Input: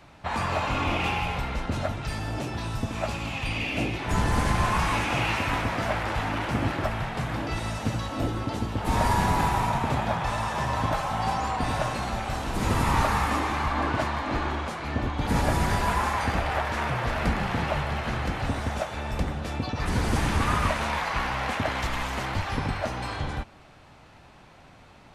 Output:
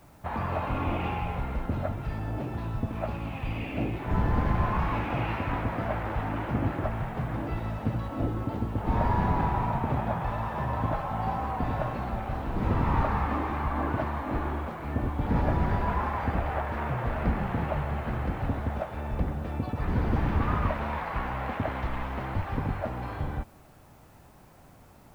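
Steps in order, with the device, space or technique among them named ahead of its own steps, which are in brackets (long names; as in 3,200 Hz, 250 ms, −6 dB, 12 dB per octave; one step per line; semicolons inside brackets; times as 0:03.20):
cassette deck with a dirty head (head-to-tape spacing loss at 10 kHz 43 dB; tape wow and flutter 11 cents; white noise bed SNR 37 dB)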